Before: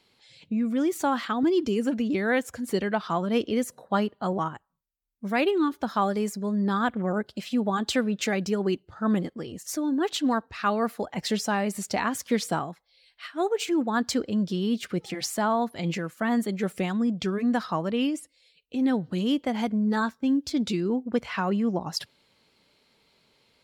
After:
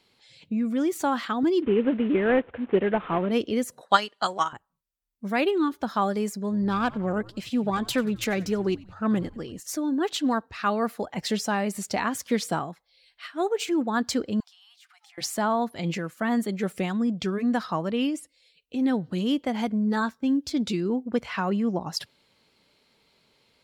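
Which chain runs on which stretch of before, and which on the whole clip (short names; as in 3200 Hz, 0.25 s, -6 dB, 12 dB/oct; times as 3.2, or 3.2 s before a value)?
1.62–3.31 CVSD 16 kbps + bell 420 Hz +6.5 dB 1.1 oct
3.81–4.53 weighting filter ITU-R 468 + transient shaper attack +9 dB, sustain -2 dB
6.42–9.6 self-modulated delay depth 0.066 ms + frequency-shifting echo 91 ms, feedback 46%, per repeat -93 Hz, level -20.5 dB
14.4–15.18 brick-wall FIR high-pass 700 Hz + compressor, threshold -54 dBFS
whole clip: dry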